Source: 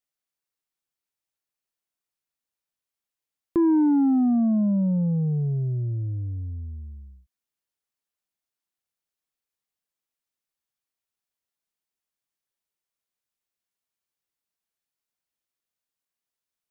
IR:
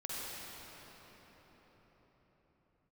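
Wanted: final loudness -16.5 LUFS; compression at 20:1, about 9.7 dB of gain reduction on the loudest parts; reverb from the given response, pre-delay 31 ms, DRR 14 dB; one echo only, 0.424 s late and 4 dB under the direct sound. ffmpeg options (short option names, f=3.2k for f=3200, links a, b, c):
-filter_complex "[0:a]acompressor=threshold=-28dB:ratio=20,aecho=1:1:424:0.631,asplit=2[a][b];[1:a]atrim=start_sample=2205,adelay=31[c];[b][c]afir=irnorm=-1:irlink=0,volume=-16.5dB[d];[a][d]amix=inputs=2:normalize=0,volume=13.5dB"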